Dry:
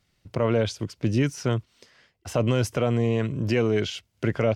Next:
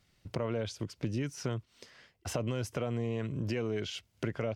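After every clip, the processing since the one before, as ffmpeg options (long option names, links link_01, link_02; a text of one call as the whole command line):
ffmpeg -i in.wav -af "acompressor=threshold=-34dB:ratio=3" out.wav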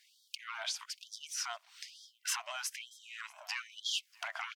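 ffmpeg -i in.wav -af "asoftclip=type=tanh:threshold=-27dB,aecho=1:1:637:0.0631,afftfilt=real='re*gte(b*sr/1024,590*pow(3200/590,0.5+0.5*sin(2*PI*1.1*pts/sr)))':imag='im*gte(b*sr/1024,590*pow(3200/590,0.5+0.5*sin(2*PI*1.1*pts/sr)))':win_size=1024:overlap=0.75,volume=8dB" out.wav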